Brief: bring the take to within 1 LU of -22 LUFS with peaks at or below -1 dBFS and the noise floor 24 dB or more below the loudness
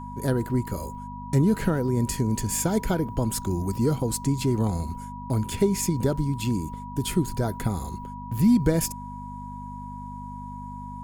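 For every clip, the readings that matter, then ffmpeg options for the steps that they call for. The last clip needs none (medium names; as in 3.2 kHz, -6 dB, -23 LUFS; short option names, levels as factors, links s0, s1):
hum 50 Hz; highest harmonic 250 Hz; hum level -37 dBFS; steady tone 970 Hz; tone level -38 dBFS; loudness -26.0 LUFS; peak level -8.0 dBFS; loudness target -22.0 LUFS
-> -af "bandreject=f=50:t=h:w=4,bandreject=f=100:t=h:w=4,bandreject=f=150:t=h:w=4,bandreject=f=200:t=h:w=4,bandreject=f=250:t=h:w=4"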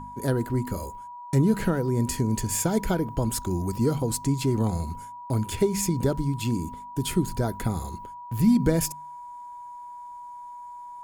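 hum not found; steady tone 970 Hz; tone level -38 dBFS
-> -af "bandreject=f=970:w=30"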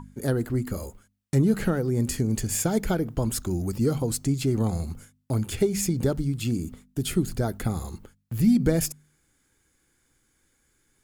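steady tone not found; loudness -26.5 LUFS; peak level -9.0 dBFS; loudness target -22.0 LUFS
-> -af "volume=1.68"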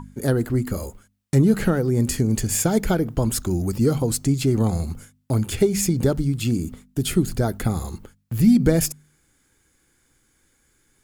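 loudness -22.0 LUFS; peak level -4.5 dBFS; noise floor -65 dBFS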